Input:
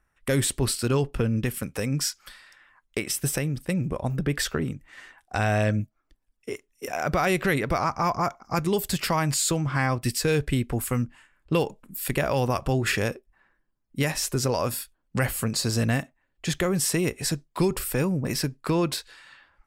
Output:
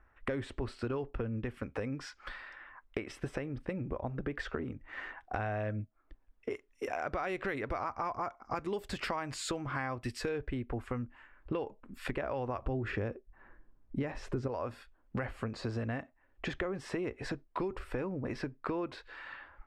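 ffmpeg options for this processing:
-filter_complex "[0:a]asettb=1/sr,asplit=3[a][b][c];[a]atrim=end=6.504[d];[b]atrim=start=6.5:end=10.29,asetpts=PTS-STARTPTS,afade=t=in:d=0.004:c=qsin,afade=t=out:st=3.786:d=0.004:c=qsin,aemphasis=mode=production:type=75kf[e];[c]atrim=start=10.286[f];[d][e]acrossfade=d=0.004:c1=hsin:c2=qsin[g];[g][f]acrossfade=d=0.004:c1=qsin:c2=hsin,asettb=1/sr,asplit=3[h][i][j];[h]atrim=end=12.644[k];[i]atrim=start=12.64:end=14.48,asetpts=PTS-STARTPTS,afade=t=in:d=0.004:c=qsin,afade=t=out:st=1.836:d=0.004:c=qsin,lowshelf=f=470:g=9[l];[j]atrim=start=14.476[m];[k][l]acrossfade=d=0.004:c1=hsin:c2=qsin[n];[n][m]acrossfade=d=0.004:c1=qsin:c2=hsin,lowpass=1.8k,equalizer=f=160:w=2.5:g=-13.5,acompressor=threshold=-44dB:ratio=4,volume=7.5dB"

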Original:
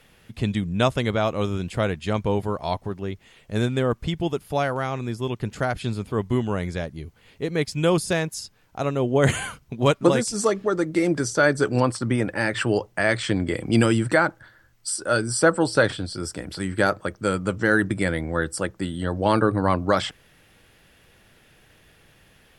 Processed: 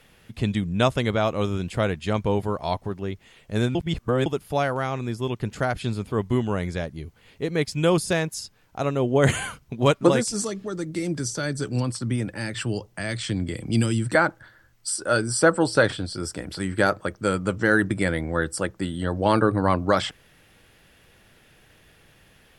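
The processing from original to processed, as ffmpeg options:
-filter_complex "[0:a]asettb=1/sr,asplit=3[a][b][c];[a]atrim=end=10.424[d];[b]atrim=start=10.42:end=14.15,asetpts=PTS-STARTPTS,afade=t=in:d=0.004:c=qsin,afade=t=out:st=3.726:d=0.004:c=qsin,acrossover=split=250|3000[e][f][g];[f]acompressor=threshold=-52dB:ratio=1.5:attack=3.2:release=140:knee=2.83:detection=peak[h];[e][h][g]amix=inputs=3:normalize=0[i];[c]atrim=start=14.146[j];[d][i]acrossfade=d=0.004:c1=hsin:c2=qsin[k];[k][j]acrossfade=d=0.004:c1=qsin:c2=hsin,asplit=3[l][m][n];[l]atrim=end=3.752[o];[m]atrim=start=3.748:end=4.262,asetpts=PTS-STARTPTS,areverse[p];[n]atrim=start=4.258[q];[o][p]acrossfade=d=0.004:c1=hsin:c2=hsin[r];[r][q]acrossfade=d=0.004:c1=hsin:c2=hsin"

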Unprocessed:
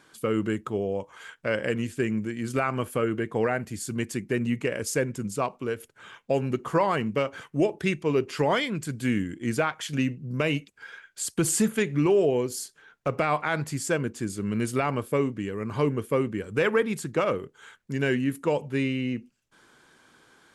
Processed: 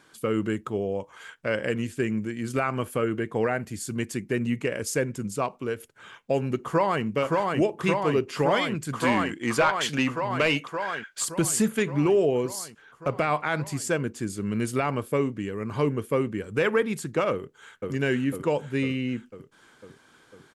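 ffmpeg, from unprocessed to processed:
-filter_complex "[0:a]asplit=2[a][b];[b]afade=t=in:st=6.63:d=0.01,afade=t=out:st=7.04:d=0.01,aecho=0:1:570|1140|1710|2280|2850|3420|3990|4560|5130|5700|6270|6840:0.794328|0.635463|0.50837|0.406696|0.325357|0.260285|0.208228|0.166583|0.133266|0.106613|0.0852903|0.0682323[c];[a][c]amix=inputs=2:normalize=0,asettb=1/sr,asplit=3[d][e][f];[d]atrim=end=8.934[g];[e]atrim=start=8.93:end=11.25,asetpts=PTS-STARTPTS,afade=t=in:d=0.004:c=qsin,afade=t=out:st=2.316:d=0.004:c=qsin,asplit=2[h][i];[i]highpass=f=720:p=1,volume=14dB,asoftclip=type=tanh:threshold=-11.5dB[j];[h][j]amix=inputs=2:normalize=0,lowpass=f=5k:p=1,volume=-6dB[k];[f]atrim=start=11.246[l];[g][k]acrossfade=d=0.004:c1=hsin:c2=qsin[m];[m][l]acrossfade=d=0.004:c1=qsin:c2=hsin,asplit=2[n][o];[o]afade=t=in:st=17.32:d=0.01,afade=t=out:st=17.91:d=0.01,aecho=0:1:500|1000|1500|2000|2500|3000|3500|4000|4500|5000|5500:0.891251|0.579313|0.376554|0.24476|0.159094|0.103411|0.0672172|0.0436912|0.0283992|0.0184595|0.0119987[p];[n][p]amix=inputs=2:normalize=0"

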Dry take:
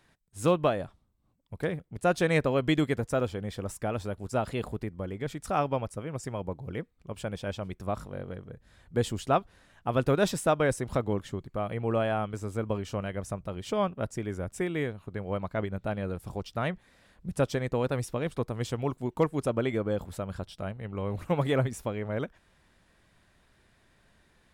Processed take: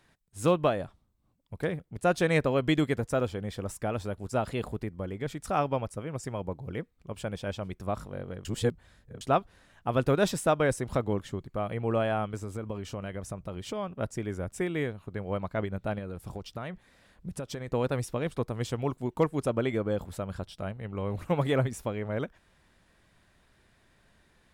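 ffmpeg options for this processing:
-filter_complex "[0:a]asettb=1/sr,asplit=3[a][b][c];[a]atrim=end=12.364[d];[b]atrim=start=12.36:end=13.91,asetpts=PTS-STARTPTS,afade=t=in:d=0.004:c=qsin,afade=t=out:st=1.546:d=0.004:c=qsin,acompressor=threshold=-31dB:ratio=3:attack=3.2:release=140:knee=1:detection=peak[e];[c]atrim=start=13.906[f];[d][e]acrossfade=d=0.004:c1=hsin:c2=qsin[g];[g][f]acrossfade=d=0.004:c1=qsin:c2=hsin,asettb=1/sr,asplit=3[h][i][j];[h]atrim=end=15.984[k];[i]atrim=start=15.98:end=17.68,asetpts=PTS-STARTPTS,afade=t=in:d=0.004:c=qsin,afade=t=out:st=1.696:d=0.004:c=qsin,acompressor=threshold=-32dB:ratio=6:attack=3.2:release=140:knee=1:detection=peak[l];[j]atrim=start=17.676[m];[k][l]acrossfade=d=0.004:c1=hsin:c2=qsin[n];[n][m]acrossfade=d=0.004:c1=qsin:c2=hsin,asplit=3[o][p][q];[o]atrim=end=8.452[r];[p]atrim=start=8.448:end=9.212,asetpts=PTS-STARTPTS,areverse[s];[q]atrim=start=9.208[t];[r][s]acrossfade=d=0.004:c1=hsin:c2=hsin[u];[u][t]acrossfade=d=0.004:c1=hsin:c2=hsin"

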